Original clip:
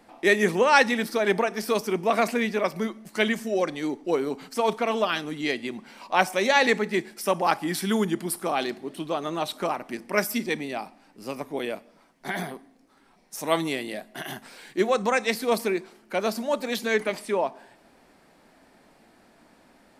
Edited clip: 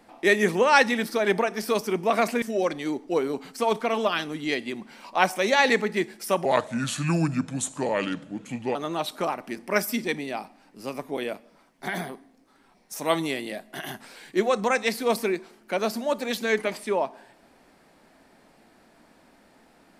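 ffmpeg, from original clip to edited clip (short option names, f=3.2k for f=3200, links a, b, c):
-filter_complex "[0:a]asplit=4[a][b][c][d];[a]atrim=end=2.422[e];[b]atrim=start=3.388:end=7.424[f];[c]atrim=start=7.42:end=9.17,asetpts=PTS-STARTPTS,asetrate=33516,aresample=44100,atrim=end_sample=101546,asetpts=PTS-STARTPTS[g];[d]atrim=start=9.166[h];[e][f]acrossfade=d=0.004:c1=hsin:c2=hsin[i];[i][g]acrossfade=d=0.004:c1=hsin:c2=hsin[j];[j][h]acrossfade=d=0.004:c1=hsin:c2=hsin"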